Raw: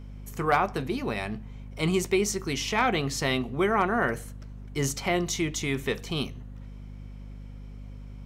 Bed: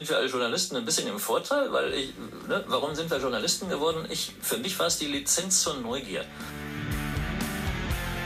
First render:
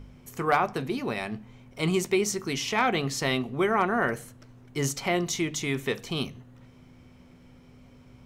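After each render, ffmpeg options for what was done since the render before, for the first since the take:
ffmpeg -i in.wav -af "bandreject=frequency=50:width_type=h:width=4,bandreject=frequency=100:width_type=h:width=4,bandreject=frequency=150:width_type=h:width=4,bandreject=frequency=200:width_type=h:width=4" out.wav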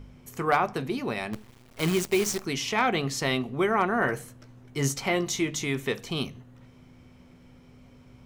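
ffmpeg -i in.wav -filter_complex "[0:a]asettb=1/sr,asplit=3[link_01][link_02][link_03];[link_01]atrim=end=1.334[link_04];[link_02]atrim=start=1.33:end=2.46,asetpts=PTS-STARTPTS,afade=type=in:duration=0.004:curve=qsin,afade=type=out:start_time=1.126:duration=0.004:curve=qsin,acrusher=bits=6:dc=4:mix=0:aa=0.000001[link_05];[link_03]atrim=start=2.456[link_06];[link_04][link_05]acrossfade=duration=0.004:curve1=hsin:curve2=qsin[link_07];[link_07][link_06]acrossfade=duration=0.004:curve1=qsin:curve2=hsin,asettb=1/sr,asplit=3[link_08][link_09][link_10];[link_08]atrim=end=3.994[link_11];[link_09]atrim=start=3.99:end=5.65,asetpts=PTS-STARTPTS,afade=type=in:duration=0.004:curve=qsin,afade=type=out:start_time=1.656:duration=0.004:curve=qsin,asplit=2[link_12][link_13];[link_13]adelay=15,volume=-8dB[link_14];[link_12][link_14]amix=inputs=2:normalize=0,atrim=end_sample=73206[link_15];[link_10]atrim=start=5.646[link_16];[link_11][link_15]acrossfade=duration=0.004:curve1=hsin:curve2=qsin[link_17];[link_17][link_16]acrossfade=duration=0.004:curve1=qsin:curve2=hsin" out.wav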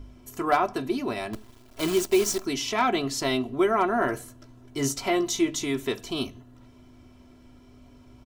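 ffmpeg -i in.wav -af "equalizer=frequency=2100:width_type=o:width=0.69:gain=-5.5,aecho=1:1:3:0.7" out.wav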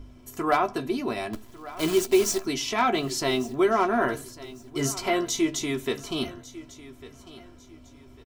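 ffmpeg -i in.wav -filter_complex "[0:a]asplit=2[link_01][link_02];[link_02]adelay=13,volume=-10.5dB[link_03];[link_01][link_03]amix=inputs=2:normalize=0,aecho=1:1:1149|2298|3447:0.133|0.04|0.012" out.wav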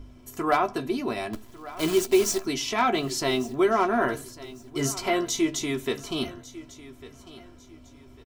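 ffmpeg -i in.wav -af anull out.wav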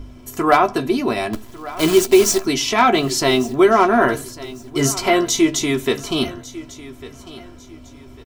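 ffmpeg -i in.wav -af "volume=9dB,alimiter=limit=-1dB:level=0:latency=1" out.wav

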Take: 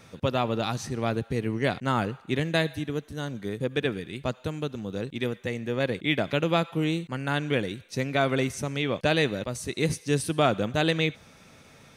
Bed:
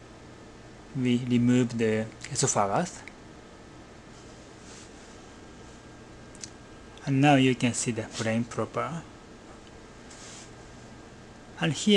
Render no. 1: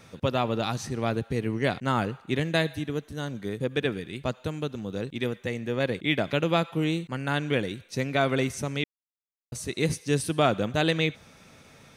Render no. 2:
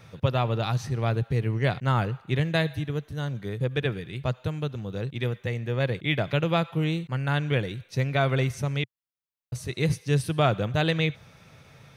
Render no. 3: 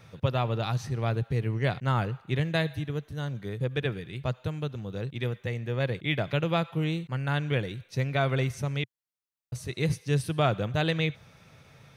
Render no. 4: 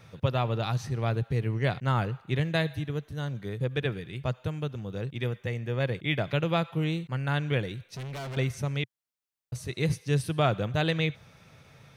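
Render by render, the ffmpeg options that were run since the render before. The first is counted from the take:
ffmpeg -i in.wav -filter_complex "[0:a]asplit=3[link_01][link_02][link_03];[link_01]atrim=end=8.84,asetpts=PTS-STARTPTS,afade=type=out:start_time=8.836:duration=0.004:curve=hsin[link_04];[link_02]atrim=start=8.84:end=9.52,asetpts=PTS-STARTPTS,volume=0[link_05];[link_03]atrim=start=9.52,asetpts=PTS-STARTPTS,afade=type=in:duration=0.004:curve=hsin[link_06];[link_04][link_05][link_06]concat=n=3:v=0:a=1" out.wav
ffmpeg -i in.wav -af "equalizer=frequency=125:width_type=o:width=1:gain=9,equalizer=frequency=250:width_type=o:width=1:gain=-7,equalizer=frequency=8000:width_type=o:width=1:gain=-7" out.wav
ffmpeg -i in.wav -af "volume=-2.5dB" out.wav
ffmpeg -i in.wav -filter_complex "[0:a]asettb=1/sr,asplit=3[link_01][link_02][link_03];[link_01]atrim=end=4.124[link_04];[link_02]atrim=start=4.12:end=6.2,asetpts=PTS-STARTPTS,afade=type=in:duration=0.004:curve=qsin,afade=type=out:start_time=2.076:duration=0.004:curve=qsin,bandreject=frequency=4000:width=12[link_05];[link_03]atrim=start=6.196[link_06];[link_04][link_05]acrossfade=duration=0.004:curve1=hsin:curve2=qsin[link_07];[link_07][link_06]acrossfade=duration=0.004:curve1=qsin:curve2=hsin,asettb=1/sr,asplit=3[link_08][link_09][link_10];[link_08]atrim=end=7.914[link_11];[link_09]atrim=start=7.91:end=8.37,asetpts=PTS-STARTPTS,afade=type=in:duration=0.004:curve=qsin,afade=type=out:start_time=0.456:duration=0.004:curve=qsin,volume=35.5dB,asoftclip=hard,volume=-35.5dB[link_12];[link_10]atrim=start=8.366[link_13];[link_11][link_12]acrossfade=duration=0.004:curve1=hsin:curve2=qsin[link_14];[link_14][link_13]acrossfade=duration=0.004:curve1=qsin:curve2=hsin" out.wav

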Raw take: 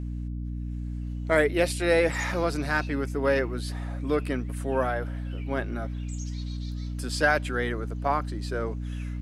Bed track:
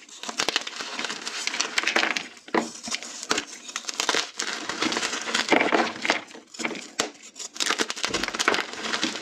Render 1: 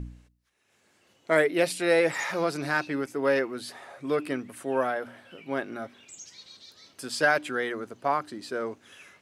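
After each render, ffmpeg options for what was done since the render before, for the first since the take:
ffmpeg -i in.wav -af "bandreject=frequency=60:width_type=h:width=4,bandreject=frequency=120:width_type=h:width=4,bandreject=frequency=180:width_type=h:width=4,bandreject=frequency=240:width_type=h:width=4,bandreject=frequency=300:width_type=h:width=4" out.wav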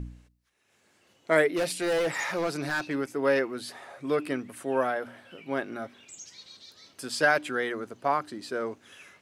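ffmpeg -i in.wav -filter_complex "[0:a]asettb=1/sr,asplit=3[link_01][link_02][link_03];[link_01]atrim=end=1.504[link_04];[link_02]atrim=start=1.5:end=2.96,asetpts=PTS-STARTPTS,afade=type=in:duration=0.004:curve=qsin,afade=type=out:start_time=1.456:duration=0.004:curve=qsin,asoftclip=type=hard:threshold=-23.5dB[link_05];[link_03]atrim=start=2.956[link_06];[link_04][link_05]acrossfade=duration=0.004:curve1=hsin:curve2=qsin[link_07];[link_07][link_06]acrossfade=duration=0.004:curve1=qsin:curve2=hsin" out.wav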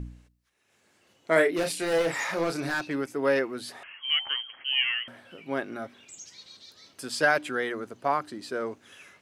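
ffmpeg -i in.wav -filter_complex "[0:a]asettb=1/sr,asplit=3[link_01][link_02][link_03];[link_01]atrim=end=1.334[link_04];[link_02]atrim=start=1.33:end=2.74,asetpts=PTS-STARTPTS,afade=type=in:duration=0.004:curve=qsin,afade=type=out:start_time=1.406:duration=0.004:curve=qsin,asplit=2[link_05][link_06];[link_06]adelay=30,volume=-7dB[link_07];[link_05][link_07]amix=inputs=2:normalize=0,atrim=end_sample=62181[link_08];[link_03]atrim=start=2.736[link_09];[link_04][link_08]acrossfade=duration=0.004:curve1=hsin:curve2=qsin[link_10];[link_10][link_09]acrossfade=duration=0.004:curve1=qsin:curve2=hsin,asettb=1/sr,asplit=3[link_11][link_12][link_13];[link_11]atrim=end=3.834[link_14];[link_12]atrim=start=3.83:end=5.08,asetpts=PTS-STARTPTS,afade=type=in:duration=0.004:curve=qsin,afade=type=out:start_time=1.246:duration=0.004:curve=qsin,lowpass=frequency=2900:width_type=q:width=0.5098,lowpass=frequency=2900:width_type=q:width=0.6013,lowpass=frequency=2900:width_type=q:width=0.9,lowpass=frequency=2900:width_type=q:width=2.563,afreqshift=-3400[link_15];[link_13]atrim=start=5.076[link_16];[link_14][link_15]acrossfade=duration=0.004:curve1=hsin:curve2=qsin[link_17];[link_17][link_16]acrossfade=duration=0.004:curve1=qsin:curve2=hsin" out.wav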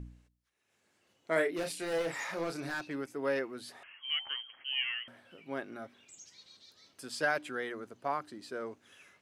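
ffmpeg -i in.wav -af "volume=-8dB" out.wav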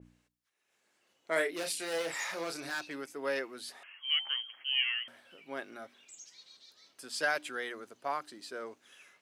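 ffmpeg -i in.wav -af "highpass=frequency=420:poles=1,adynamicequalizer=threshold=0.00398:dfrequency=2500:dqfactor=0.7:tfrequency=2500:tqfactor=0.7:attack=5:release=100:ratio=0.375:range=3:mode=boostabove:tftype=highshelf" out.wav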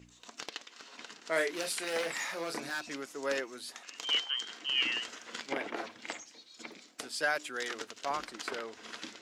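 ffmpeg -i in.wav -i bed.wav -filter_complex "[1:a]volume=-18dB[link_01];[0:a][link_01]amix=inputs=2:normalize=0" out.wav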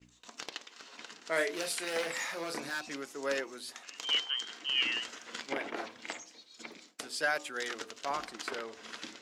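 ffmpeg -i in.wav -af "bandreject=frequency=63.5:width_type=h:width=4,bandreject=frequency=127:width_type=h:width=4,bandreject=frequency=190.5:width_type=h:width=4,bandreject=frequency=254:width_type=h:width=4,bandreject=frequency=317.5:width_type=h:width=4,bandreject=frequency=381:width_type=h:width=4,bandreject=frequency=444.5:width_type=h:width=4,bandreject=frequency=508:width_type=h:width=4,bandreject=frequency=571.5:width_type=h:width=4,bandreject=frequency=635:width_type=h:width=4,bandreject=frequency=698.5:width_type=h:width=4,bandreject=frequency=762:width_type=h:width=4,bandreject=frequency=825.5:width_type=h:width=4,bandreject=frequency=889:width_type=h:width=4,bandreject=frequency=952.5:width_type=h:width=4,bandreject=frequency=1016:width_type=h:width=4,bandreject=frequency=1079.5:width_type=h:width=4,bandreject=frequency=1143:width_type=h:width=4,bandreject=frequency=1206.5:width_type=h:width=4,agate=range=-33dB:threshold=-54dB:ratio=3:detection=peak" out.wav

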